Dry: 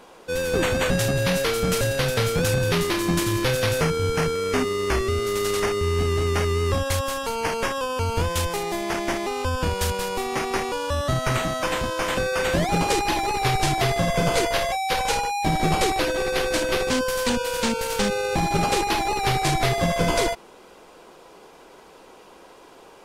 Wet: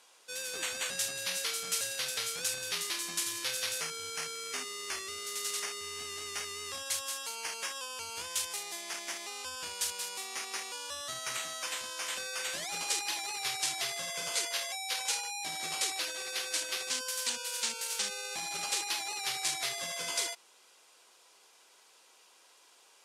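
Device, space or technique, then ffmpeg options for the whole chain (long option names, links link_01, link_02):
piezo pickup straight into a mixer: -af "lowpass=9000,aderivative"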